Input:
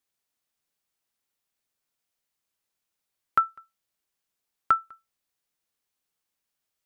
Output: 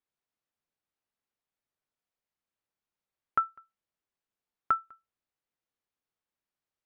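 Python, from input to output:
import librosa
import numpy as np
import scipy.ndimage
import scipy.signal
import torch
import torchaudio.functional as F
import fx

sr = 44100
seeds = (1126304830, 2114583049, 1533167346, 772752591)

y = fx.lowpass(x, sr, hz=1700.0, slope=6)
y = y * 10.0 ** (-3.0 / 20.0)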